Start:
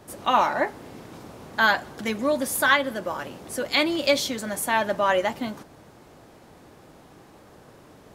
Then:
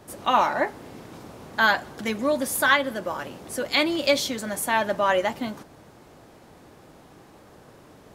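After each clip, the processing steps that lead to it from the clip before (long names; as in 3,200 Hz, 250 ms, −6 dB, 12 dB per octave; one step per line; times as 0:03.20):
no processing that can be heard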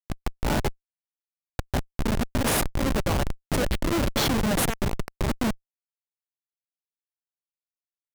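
compressor whose output falls as the input rises −28 dBFS, ratio −1
comparator with hysteresis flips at −23.5 dBFS
level +8 dB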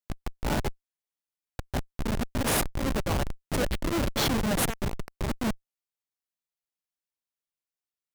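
brickwall limiter −23.5 dBFS, peak gain reduction 6.5 dB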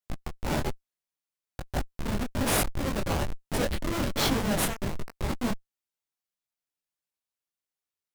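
micro pitch shift up and down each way 40 cents
level +3.5 dB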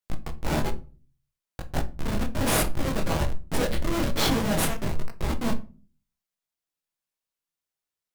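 rectangular room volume 210 cubic metres, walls furnished, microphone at 0.63 metres
level +1 dB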